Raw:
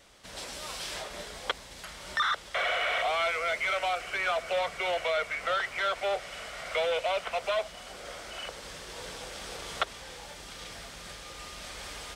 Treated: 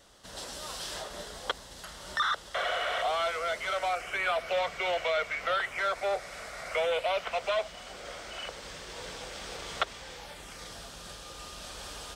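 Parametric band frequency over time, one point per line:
parametric band −10 dB 0.35 octaves
0:03.74 2,300 Hz
0:04.59 10,000 Hz
0:05.40 10,000 Hz
0:05.86 3,000 Hz
0:06.65 3,000 Hz
0:07.32 11,000 Hz
0:10.13 11,000 Hz
0:10.75 2,100 Hz

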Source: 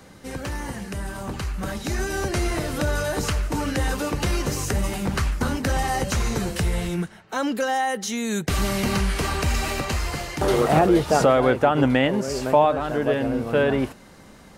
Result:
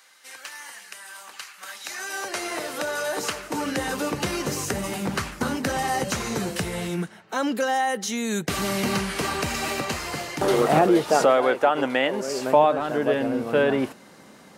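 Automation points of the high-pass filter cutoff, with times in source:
0:01.72 1,500 Hz
0:02.51 460 Hz
0:03.02 460 Hz
0:03.97 160 Hz
0:10.68 160 Hz
0:11.49 410 Hz
0:12.05 410 Hz
0:12.58 180 Hz

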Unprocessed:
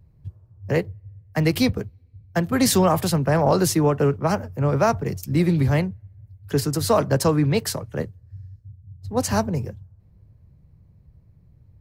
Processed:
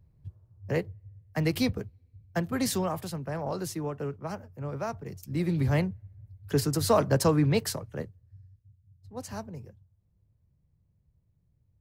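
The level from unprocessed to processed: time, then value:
0:02.38 −7 dB
0:03.09 −14.5 dB
0:05.01 −14.5 dB
0:05.85 −4 dB
0:07.54 −4 dB
0:08.78 −16.5 dB

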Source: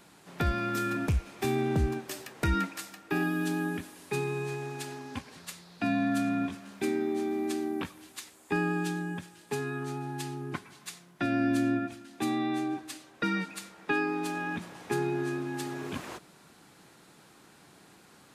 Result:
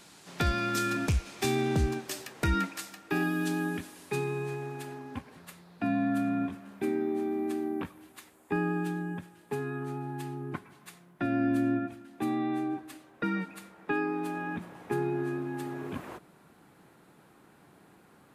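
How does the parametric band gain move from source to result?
parametric band 5,600 Hz 2.1 octaves
0:01.66 +7.5 dB
0:02.44 +1 dB
0:03.94 +1 dB
0:04.42 −6 dB
0:05.04 −12.5 dB

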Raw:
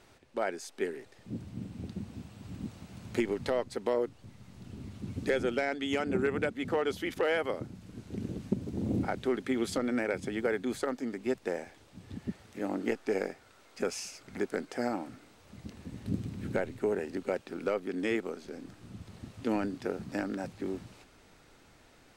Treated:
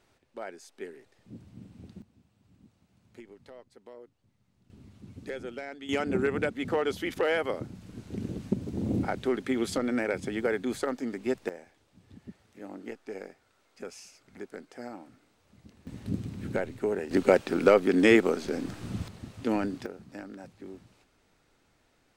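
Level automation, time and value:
−7.5 dB
from 0:02.02 −19 dB
from 0:04.70 −8.5 dB
from 0:05.89 +2 dB
from 0:11.49 −9 dB
from 0:15.87 +1 dB
from 0:17.11 +11.5 dB
from 0:19.08 +2.5 dB
from 0:19.86 −8.5 dB

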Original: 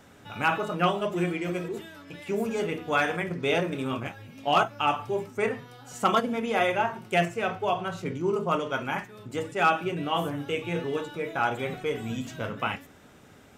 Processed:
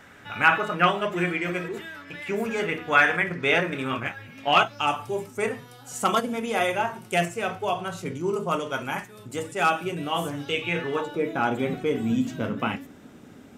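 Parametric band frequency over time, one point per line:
parametric band +10.5 dB 1.3 octaves
0:04.51 1,800 Hz
0:04.93 10,000 Hz
0:10.16 10,000 Hz
0:10.92 1,400 Hz
0:11.26 250 Hz

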